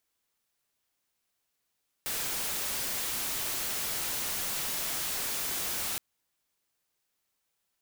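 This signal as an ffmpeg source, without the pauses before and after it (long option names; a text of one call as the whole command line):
ffmpeg -f lavfi -i "anoisesrc=color=white:amplitude=0.0388:duration=3.92:sample_rate=44100:seed=1" out.wav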